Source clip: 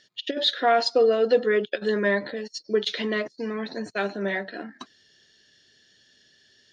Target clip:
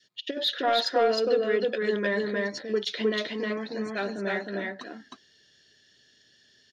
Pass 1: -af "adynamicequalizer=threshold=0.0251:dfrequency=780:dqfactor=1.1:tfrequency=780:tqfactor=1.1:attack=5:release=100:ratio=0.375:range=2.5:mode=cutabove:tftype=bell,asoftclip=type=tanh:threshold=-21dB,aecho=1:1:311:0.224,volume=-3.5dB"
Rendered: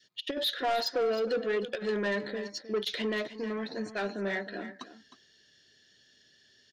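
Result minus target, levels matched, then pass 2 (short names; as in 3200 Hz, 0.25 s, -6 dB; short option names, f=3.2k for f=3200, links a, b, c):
soft clip: distortion +13 dB; echo-to-direct -11 dB
-af "adynamicequalizer=threshold=0.0251:dfrequency=780:dqfactor=1.1:tfrequency=780:tqfactor=1.1:attack=5:release=100:ratio=0.375:range=2.5:mode=cutabove:tftype=bell,asoftclip=type=tanh:threshold=-10.5dB,aecho=1:1:311:0.794,volume=-3.5dB"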